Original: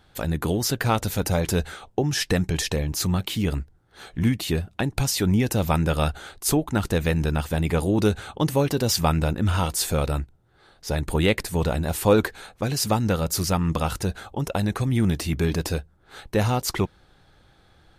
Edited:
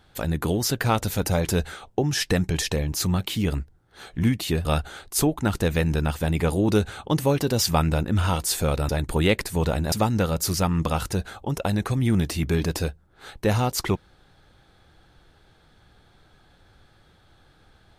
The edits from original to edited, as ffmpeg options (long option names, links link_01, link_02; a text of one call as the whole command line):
ffmpeg -i in.wav -filter_complex "[0:a]asplit=4[link_01][link_02][link_03][link_04];[link_01]atrim=end=4.652[link_05];[link_02]atrim=start=5.948:end=10.192[link_06];[link_03]atrim=start=10.878:end=11.912[link_07];[link_04]atrim=start=12.818[link_08];[link_05][link_06]acrossfade=duration=0.004:curve1=hsin:curve2=hsin[link_09];[link_09][link_07]acrossfade=duration=0.004:curve1=hsin:curve2=hsin[link_10];[link_10][link_08]acrossfade=duration=0.004:curve1=hsin:curve2=hsin" out.wav